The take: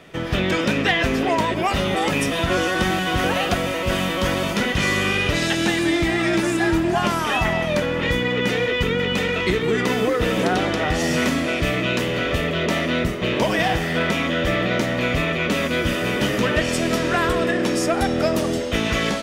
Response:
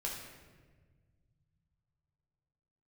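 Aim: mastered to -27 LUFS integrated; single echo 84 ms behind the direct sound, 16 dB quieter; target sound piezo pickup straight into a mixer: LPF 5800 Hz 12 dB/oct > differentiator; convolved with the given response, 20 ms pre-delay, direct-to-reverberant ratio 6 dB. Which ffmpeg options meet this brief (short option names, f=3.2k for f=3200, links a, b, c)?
-filter_complex "[0:a]aecho=1:1:84:0.158,asplit=2[a][b];[1:a]atrim=start_sample=2205,adelay=20[c];[b][c]afir=irnorm=-1:irlink=0,volume=-7.5dB[d];[a][d]amix=inputs=2:normalize=0,lowpass=5.8k,aderivative,volume=6dB"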